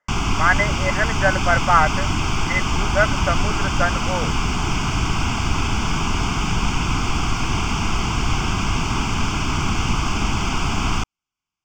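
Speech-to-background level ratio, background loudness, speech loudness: 1.0 dB, −22.5 LKFS, −21.5 LKFS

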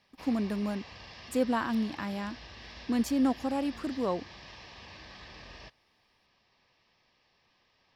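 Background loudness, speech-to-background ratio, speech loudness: −47.5 LKFS, 16.0 dB, −31.5 LKFS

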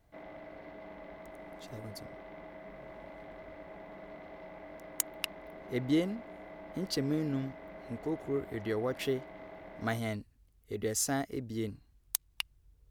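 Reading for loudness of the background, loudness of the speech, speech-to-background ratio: −49.0 LKFS, −35.5 LKFS, 13.5 dB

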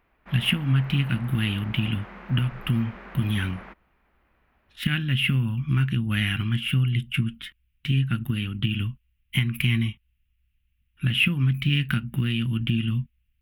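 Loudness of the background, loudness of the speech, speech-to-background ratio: −43.5 LKFS, −25.5 LKFS, 18.0 dB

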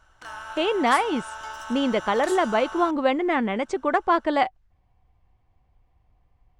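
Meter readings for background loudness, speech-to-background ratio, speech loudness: −36.5 LKFS, 13.0 dB, −23.5 LKFS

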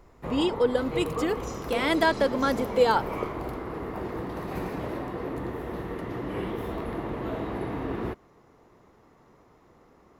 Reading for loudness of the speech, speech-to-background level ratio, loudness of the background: −26.0 LKFS, 7.5 dB, −33.5 LKFS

